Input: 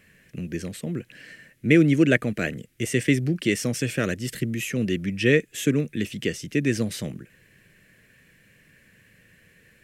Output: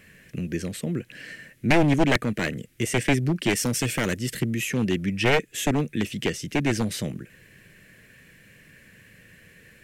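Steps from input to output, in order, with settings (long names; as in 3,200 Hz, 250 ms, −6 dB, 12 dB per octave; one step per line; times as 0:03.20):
wavefolder on the positive side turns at −18.5 dBFS
0:03.56–0:04.19: high-shelf EQ 7,700 Hz +7.5 dB
in parallel at −3 dB: downward compressor, threshold −37 dBFS, peak gain reduction 20.5 dB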